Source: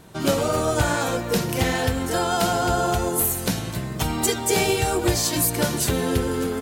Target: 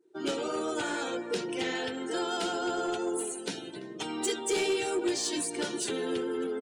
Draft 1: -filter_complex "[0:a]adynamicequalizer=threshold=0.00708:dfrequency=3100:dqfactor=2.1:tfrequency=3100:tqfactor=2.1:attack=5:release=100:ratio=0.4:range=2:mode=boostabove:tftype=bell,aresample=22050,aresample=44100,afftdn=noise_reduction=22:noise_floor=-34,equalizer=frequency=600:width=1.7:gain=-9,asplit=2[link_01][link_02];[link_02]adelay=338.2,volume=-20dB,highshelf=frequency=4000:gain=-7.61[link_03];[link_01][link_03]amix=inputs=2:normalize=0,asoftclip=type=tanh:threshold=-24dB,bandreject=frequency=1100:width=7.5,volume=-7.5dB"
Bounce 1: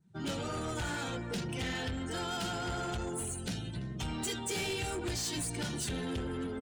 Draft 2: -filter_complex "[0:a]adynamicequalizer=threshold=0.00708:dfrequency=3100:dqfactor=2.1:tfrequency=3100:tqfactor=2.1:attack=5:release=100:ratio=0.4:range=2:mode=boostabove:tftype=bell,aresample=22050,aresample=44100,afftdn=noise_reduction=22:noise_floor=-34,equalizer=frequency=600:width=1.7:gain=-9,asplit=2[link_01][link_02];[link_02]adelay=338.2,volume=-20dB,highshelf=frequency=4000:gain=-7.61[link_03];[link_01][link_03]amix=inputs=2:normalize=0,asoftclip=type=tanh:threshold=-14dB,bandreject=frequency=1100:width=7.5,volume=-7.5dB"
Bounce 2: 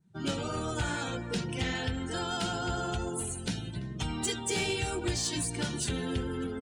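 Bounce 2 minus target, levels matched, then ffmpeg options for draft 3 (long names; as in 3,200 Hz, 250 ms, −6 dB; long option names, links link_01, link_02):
500 Hz band −4.5 dB
-filter_complex "[0:a]adynamicequalizer=threshold=0.00708:dfrequency=3100:dqfactor=2.1:tfrequency=3100:tqfactor=2.1:attack=5:release=100:ratio=0.4:range=2:mode=boostabove:tftype=bell,highpass=frequency=370:width_type=q:width=2.3,aresample=22050,aresample=44100,afftdn=noise_reduction=22:noise_floor=-34,equalizer=frequency=600:width=1.7:gain=-9,asplit=2[link_01][link_02];[link_02]adelay=338.2,volume=-20dB,highshelf=frequency=4000:gain=-7.61[link_03];[link_01][link_03]amix=inputs=2:normalize=0,asoftclip=type=tanh:threshold=-14dB,bandreject=frequency=1100:width=7.5,volume=-7.5dB"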